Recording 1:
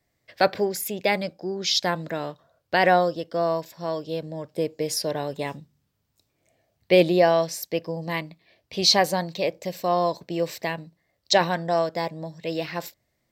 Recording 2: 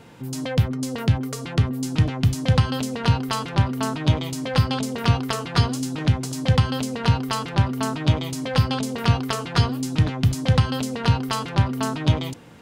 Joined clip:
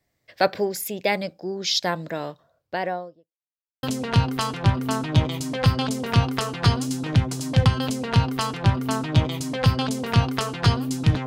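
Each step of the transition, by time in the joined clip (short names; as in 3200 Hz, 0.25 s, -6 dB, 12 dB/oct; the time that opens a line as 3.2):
recording 1
2.27–3.35 studio fade out
3.35–3.83 mute
3.83 switch to recording 2 from 2.75 s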